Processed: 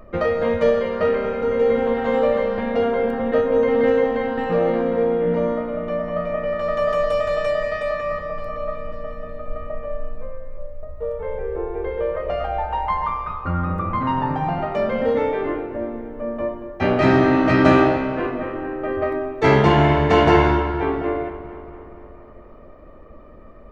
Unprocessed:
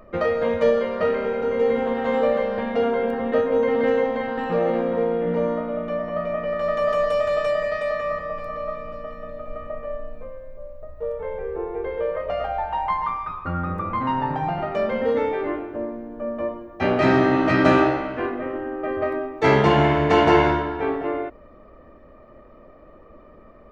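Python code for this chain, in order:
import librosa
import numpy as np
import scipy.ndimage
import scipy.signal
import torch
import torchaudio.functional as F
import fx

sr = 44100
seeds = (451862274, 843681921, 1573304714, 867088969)

y = fx.low_shelf(x, sr, hz=120.0, db=7.0)
y = fx.echo_filtered(y, sr, ms=234, feedback_pct=66, hz=4100.0, wet_db=-14.0)
y = y * librosa.db_to_amplitude(1.0)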